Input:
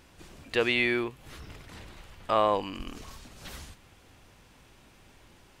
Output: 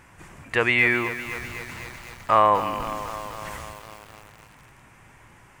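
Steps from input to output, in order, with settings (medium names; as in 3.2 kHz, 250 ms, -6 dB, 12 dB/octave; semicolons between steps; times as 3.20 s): graphic EQ 125/1000/2000/4000/8000 Hz +9/+8/+10/-9/+6 dB; bit-crushed delay 252 ms, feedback 80%, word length 6-bit, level -11.5 dB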